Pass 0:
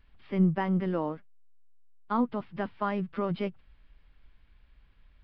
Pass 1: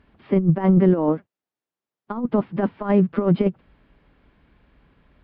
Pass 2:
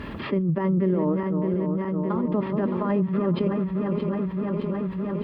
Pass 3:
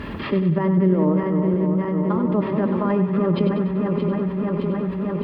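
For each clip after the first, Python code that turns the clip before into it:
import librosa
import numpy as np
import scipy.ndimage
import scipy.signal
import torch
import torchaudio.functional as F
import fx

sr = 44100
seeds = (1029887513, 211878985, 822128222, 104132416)

y1 = scipy.signal.sosfilt(scipy.signal.butter(2, 270.0, 'highpass', fs=sr, output='sos'), x)
y1 = fx.over_compress(y1, sr, threshold_db=-33.0, ratio=-0.5)
y1 = fx.tilt_eq(y1, sr, slope=-4.5)
y1 = y1 * 10.0 ** (8.5 / 20.0)
y2 = fx.reverse_delay_fb(y1, sr, ms=308, feedback_pct=78, wet_db=-9.5)
y2 = fx.notch_comb(y2, sr, f0_hz=750.0)
y2 = fx.env_flatten(y2, sr, amount_pct=70)
y2 = y2 * 10.0 ** (-8.5 / 20.0)
y3 = fx.echo_feedback(y2, sr, ms=97, feedback_pct=52, wet_db=-9.5)
y3 = y3 * 10.0 ** (3.5 / 20.0)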